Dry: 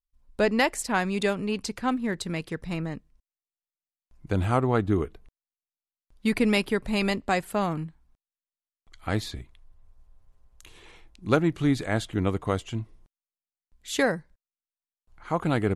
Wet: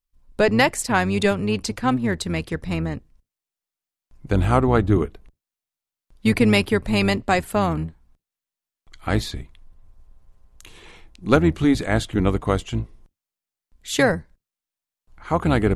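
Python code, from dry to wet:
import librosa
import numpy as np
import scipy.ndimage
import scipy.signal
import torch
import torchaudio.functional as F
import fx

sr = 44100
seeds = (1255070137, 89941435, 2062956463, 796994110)

y = fx.octave_divider(x, sr, octaves=1, level_db=-6.0)
y = F.gain(torch.from_numpy(y), 5.5).numpy()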